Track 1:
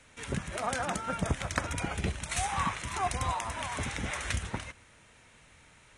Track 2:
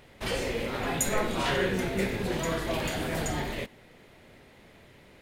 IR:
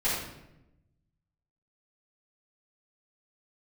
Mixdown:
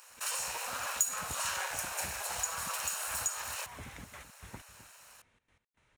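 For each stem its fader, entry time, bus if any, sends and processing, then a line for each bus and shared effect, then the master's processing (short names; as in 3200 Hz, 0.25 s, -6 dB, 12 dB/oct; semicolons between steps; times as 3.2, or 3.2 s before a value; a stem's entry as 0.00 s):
-11.5 dB, 0.00 s, no send, echo send -12.5 dB, high shelf 5700 Hz -9.5 dB; step gate ".x..xx.xx.xxxx" 156 bpm -60 dB
+2.0 dB, 0.00 s, no send, no echo send, minimum comb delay 0.73 ms; steep high-pass 560 Hz 48 dB/oct; resonant high shelf 5200 Hz +10.5 dB, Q 1.5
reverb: off
echo: echo 0.261 s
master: compressor 2:1, threshold -37 dBFS, peak gain reduction 14 dB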